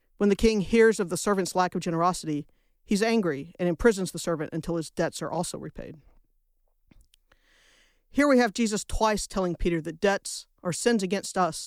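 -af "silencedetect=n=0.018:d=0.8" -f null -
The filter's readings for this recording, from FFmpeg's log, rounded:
silence_start: 5.91
silence_end: 8.16 | silence_duration: 2.25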